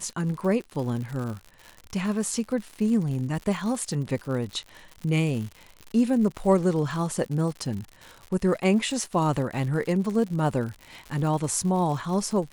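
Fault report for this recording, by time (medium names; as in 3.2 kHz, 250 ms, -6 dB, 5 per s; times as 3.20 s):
crackle 110 per s -33 dBFS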